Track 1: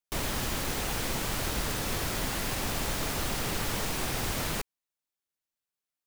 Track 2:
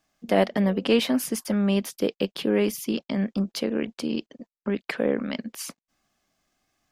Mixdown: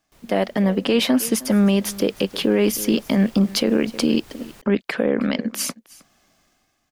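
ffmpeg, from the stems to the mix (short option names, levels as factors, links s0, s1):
-filter_complex "[0:a]volume=0.188,afade=t=in:st=1.4:d=0.28:silence=0.354813[s0];[1:a]dynaudnorm=f=150:g=9:m=4.73,volume=1.06,asplit=2[s1][s2];[s2]volume=0.0841,aecho=0:1:314:1[s3];[s0][s1][s3]amix=inputs=3:normalize=0,alimiter=limit=0.376:level=0:latency=1:release=103"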